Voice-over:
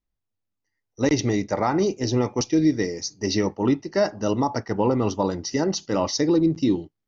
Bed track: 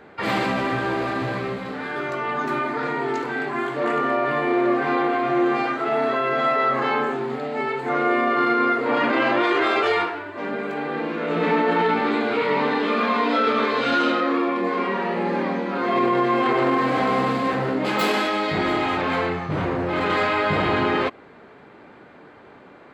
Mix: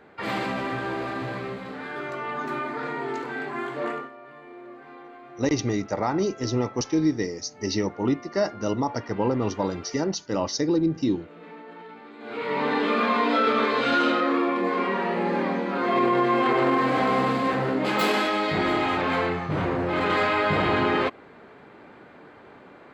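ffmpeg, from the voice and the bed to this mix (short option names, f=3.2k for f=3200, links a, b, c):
-filter_complex "[0:a]adelay=4400,volume=-3dB[a];[1:a]volume=16.5dB,afade=t=out:st=3.85:d=0.25:silence=0.125893,afade=t=in:st=12.18:d=0.6:silence=0.0794328[b];[a][b]amix=inputs=2:normalize=0"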